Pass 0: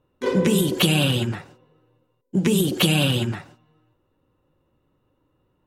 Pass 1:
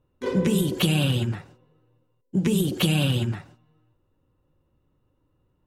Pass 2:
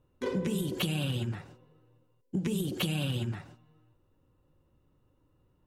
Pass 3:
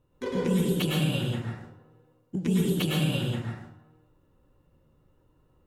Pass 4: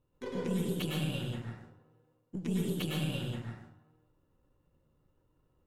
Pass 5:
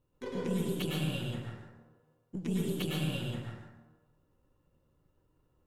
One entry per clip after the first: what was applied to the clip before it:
low shelf 140 Hz +10 dB; gain -5.5 dB
compressor 3:1, threshold -31 dBFS, peak gain reduction 10.5 dB
plate-style reverb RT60 0.68 s, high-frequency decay 0.55×, pre-delay 95 ms, DRR -3.5 dB
half-wave gain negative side -3 dB; gain -6.5 dB
plate-style reverb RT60 0.73 s, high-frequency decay 0.55×, pre-delay 0.105 s, DRR 9.5 dB

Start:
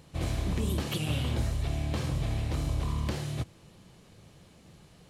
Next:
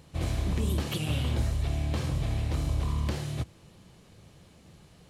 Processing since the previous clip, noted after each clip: bell 72 Hz +3 dB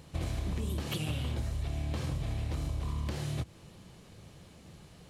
compressor, threshold -32 dBFS, peak gain reduction 9.5 dB; gain +1.5 dB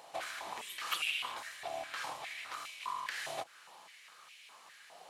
stepped high-pass 4.9 Hz 740–2400 Hz; gain +1 dB

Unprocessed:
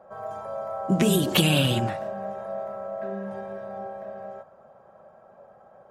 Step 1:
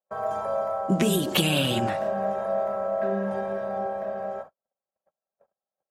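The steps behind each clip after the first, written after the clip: gate -45 dBFS, range -49 dB; bell 120 Hz -6.5 dB 0.72 oct; vocal rider within 4 dB 0.5 s; gain +2.5 dB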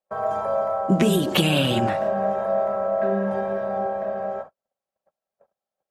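high shelf 4200 Hz -7 dB; gain +4 dB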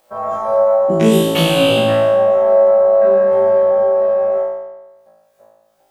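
upward compressor, threshold -40 dBFS; on a send: flutter echo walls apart 3.1 m, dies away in 1.1 s; on the sum: gain -1 dB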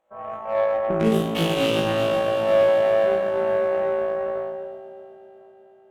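Wiener smoothing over 9 samples; multi-head echo 0.124 s, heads second and third, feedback 67%, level -10 dB; added harmonics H 4 -21 dB, 6 -23 dB, 7 -24 dB, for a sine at -0.5 dBFS; gain -7.5 dB

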